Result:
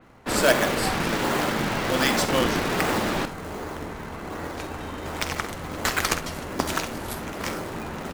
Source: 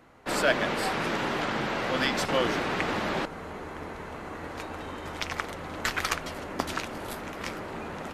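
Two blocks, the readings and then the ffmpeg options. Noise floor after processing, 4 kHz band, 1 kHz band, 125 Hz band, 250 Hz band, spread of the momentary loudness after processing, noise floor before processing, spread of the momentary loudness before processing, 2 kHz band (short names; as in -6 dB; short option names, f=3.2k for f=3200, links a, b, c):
-36 dBFS, +4.5 dB, +3.5 dB, +6.5 dB, +5.5 dB, 13 LU, -40 dBFS, 13 LU, +3.5 dB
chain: -filter_complex "[0:a]asplit=2[a][b];[b]acrusher=samples=37:mix=1:aa=0.000001:lfo=1:lforange=59.2:lforate=1.3,volume=-5.5dB[c];[a][c]amix=inputs=2:normalize=0,aecho=1:1:49|66:0.188|0.178,adynamicequalizer=threshold=0.00562:dfrequency=4600:dqfactor=0.7:tfrequency=4600:tqfactor=0.7:attack=5:release=100:ratio=0.375:range=3:mode=boostabove:tftype=highshelf,volume=2dB"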